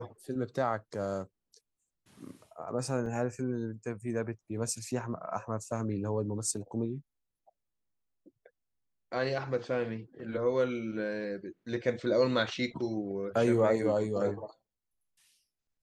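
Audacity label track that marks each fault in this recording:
3.060000	3.060000	dropout 2.3 ms

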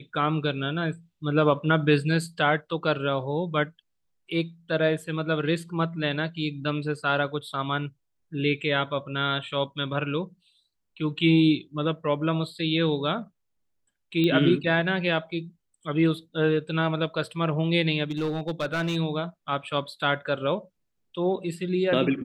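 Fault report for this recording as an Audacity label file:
14.240000	14.240000	pop -15 dBFS
18.100000	18.970000	clipped -23 dBFS

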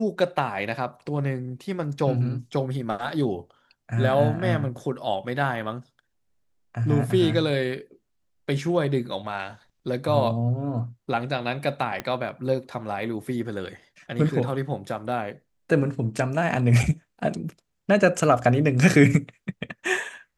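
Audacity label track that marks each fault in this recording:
12.000000	12.000000	pop -14 dBFS

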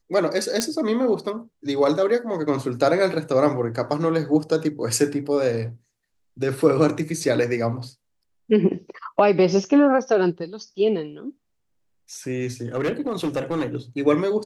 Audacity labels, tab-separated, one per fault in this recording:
0.600000	0.600000	pop -7 dBFS
12.750000	13.770000	clipped -19 dBFS

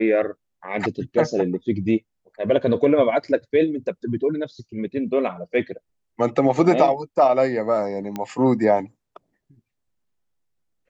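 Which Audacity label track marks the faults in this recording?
8.160000	8.160000	pop -15 dBFS

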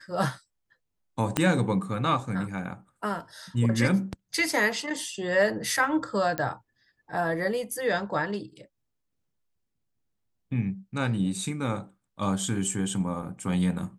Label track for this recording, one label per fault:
1.370000	1.370000	pop -8 dBFS
6.380000	6.380000	pop -14 dBFS

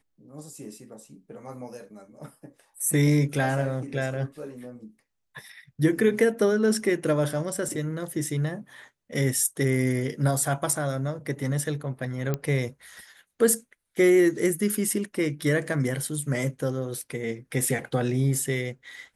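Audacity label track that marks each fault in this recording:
12.340000	12.340000	pop -14 dBFS

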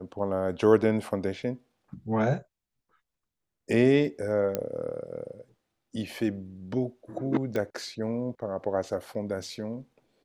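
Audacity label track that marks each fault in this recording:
4.550000	4.550000	pop -14 dBFS
7.560000	7.560000	pop -18 dBFS

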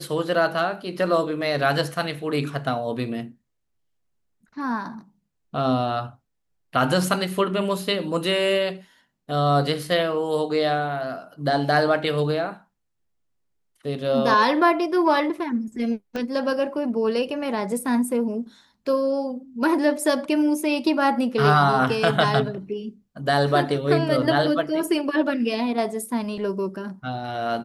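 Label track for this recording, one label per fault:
16.160000	16.160000	pop -17 dBFS

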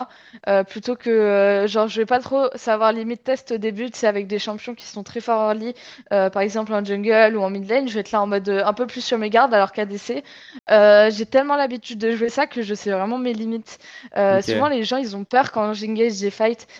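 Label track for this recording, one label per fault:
4.800000	4.800000	pop -23 dBFS
10.590000	10.670000	dropout 79 ms

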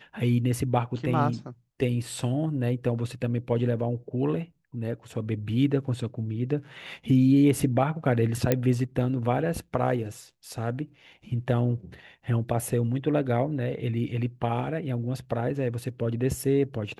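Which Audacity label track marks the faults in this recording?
8.520000	8.520000	pop -8 dBFS

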